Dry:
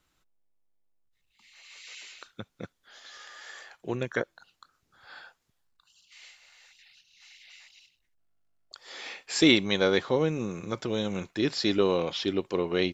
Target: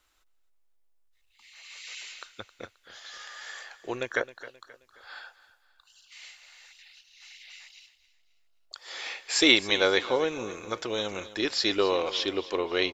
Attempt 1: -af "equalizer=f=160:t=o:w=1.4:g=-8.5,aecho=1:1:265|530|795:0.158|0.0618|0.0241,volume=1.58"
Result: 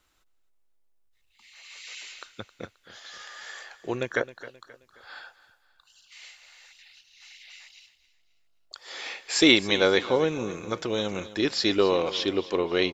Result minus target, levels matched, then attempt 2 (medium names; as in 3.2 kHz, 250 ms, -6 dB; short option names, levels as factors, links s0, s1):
125 Hz band +6.5 dB
-af "equalizer=f=160:t=o:w=1.4:g=-20.5,aecho=1:1:265|530|795:0.158|0.0618|0.0241,volume=1.58"